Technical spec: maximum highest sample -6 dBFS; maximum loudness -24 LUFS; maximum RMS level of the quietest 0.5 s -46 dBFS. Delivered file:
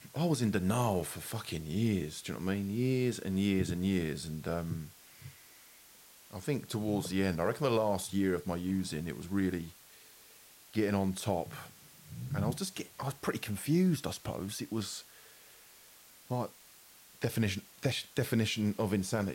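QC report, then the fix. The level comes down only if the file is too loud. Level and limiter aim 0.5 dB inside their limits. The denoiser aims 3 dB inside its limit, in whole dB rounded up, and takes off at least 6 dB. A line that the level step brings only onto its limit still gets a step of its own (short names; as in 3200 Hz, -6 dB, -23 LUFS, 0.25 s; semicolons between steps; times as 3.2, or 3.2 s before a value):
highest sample -17.0 dBFS: OK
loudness -34.0 LUFS: OK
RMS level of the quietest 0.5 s -58 dBFS: OK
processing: none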